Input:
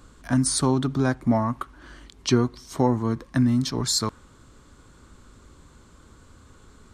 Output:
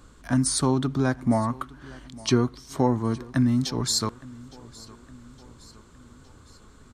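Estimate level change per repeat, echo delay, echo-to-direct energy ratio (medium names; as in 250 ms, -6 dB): -5.5 dB, 863 ms, -20.0 dB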